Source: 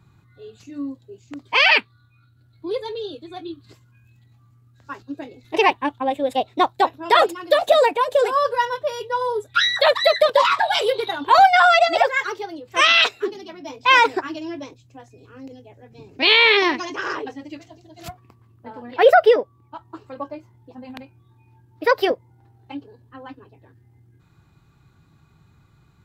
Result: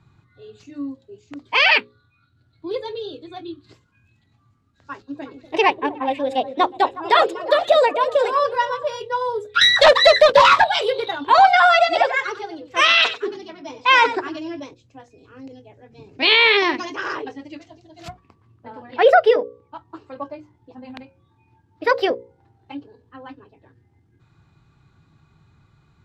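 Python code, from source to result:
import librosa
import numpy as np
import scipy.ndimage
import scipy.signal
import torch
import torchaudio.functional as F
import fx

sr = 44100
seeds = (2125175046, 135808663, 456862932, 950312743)

y = fx.echo_stepped(x, sr, ms=121, hz=170.0, octaves=1.4, feedback_pct=70, wet_db=-7, at=(5.15, 8.96), fade=0.02)
y = fx.leveller(y, sr, passes=2, at=(9.61, 10.64))
y = fx.echo_single(y, sr, ms=92, db=-13.0, at=(11.19, 14.6))
y = scipy.signal.sosfilt(scipy.signal.butter(2, 6500.0, 'lowpass', fs=sr, output='sos'), y)
y = fx.hum_notches(y, sr, base_hz=60, count=9)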